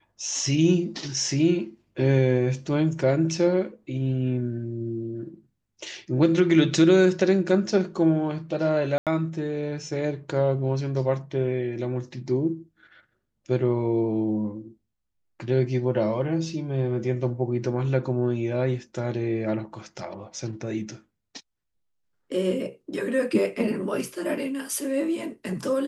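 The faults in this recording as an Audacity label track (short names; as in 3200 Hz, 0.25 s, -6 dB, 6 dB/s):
8.980000	9.070000	gap 87 ms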